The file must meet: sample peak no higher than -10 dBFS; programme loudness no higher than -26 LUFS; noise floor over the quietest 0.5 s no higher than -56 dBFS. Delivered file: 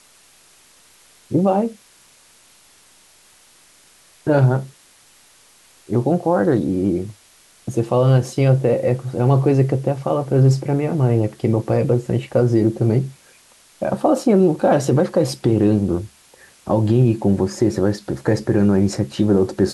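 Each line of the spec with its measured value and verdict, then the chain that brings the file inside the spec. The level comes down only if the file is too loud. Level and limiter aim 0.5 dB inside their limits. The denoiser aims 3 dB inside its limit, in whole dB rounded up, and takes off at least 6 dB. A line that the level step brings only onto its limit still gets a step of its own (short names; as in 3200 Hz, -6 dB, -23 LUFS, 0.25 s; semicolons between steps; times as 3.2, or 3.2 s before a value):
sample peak -6.0 dBFS: fail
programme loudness -18.5 LUFS: fail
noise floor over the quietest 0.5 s -52 dBFS: fail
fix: gain -8 dB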